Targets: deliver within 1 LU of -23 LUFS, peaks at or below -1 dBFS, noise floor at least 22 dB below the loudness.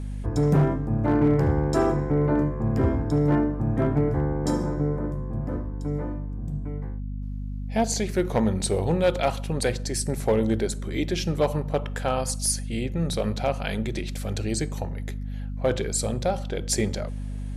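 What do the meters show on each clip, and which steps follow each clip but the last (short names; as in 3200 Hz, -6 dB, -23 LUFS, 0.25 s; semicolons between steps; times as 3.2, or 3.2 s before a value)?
clipped 0.5%; flat tops at -14.0 dBFS; hum 50 Hz; harmonics up to 250 Hz; hum level -29 dBFS; loudness -26.0 LUFS; peak -14.0 dBFS; loudness target -23.0 LUFS
-> clip repair -14 dBFS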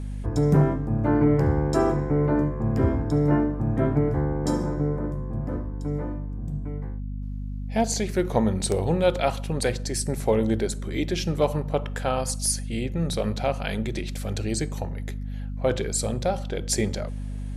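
clipped 0.0%; hum 50 Hz; harmonics up to 250 Hz; hum level -29 dBFS
-> de-hum 50 Hz, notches 5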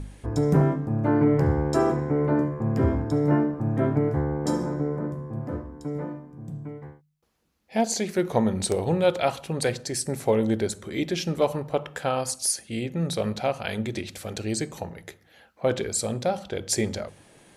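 hum none; loudness -26.0 LUFS; peak -7.5 dBFS; loudness target -23.0 LUFS
-> gain +3 dB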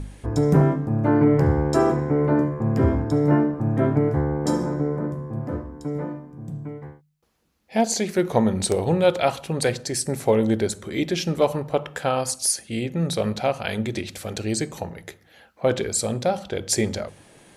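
loudness -23.0 LUFS; peak -4.5 dBFS; noise floor -57 dBFS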